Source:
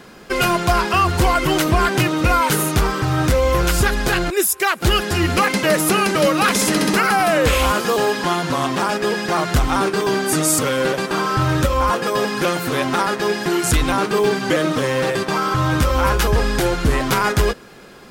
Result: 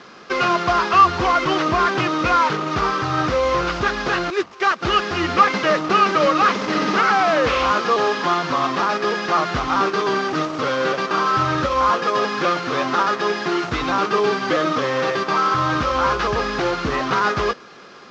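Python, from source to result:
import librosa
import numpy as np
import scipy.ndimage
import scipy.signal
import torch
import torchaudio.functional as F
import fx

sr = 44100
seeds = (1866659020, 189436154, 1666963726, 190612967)

y = fx.cvsd(x, sr, bps=32000)
y = fx.highpass(y, sr, hz=290.0, slope=6)
y = fx.peak_eq(y, sr, hz=1200.0, db=8.5, octaves=0.26)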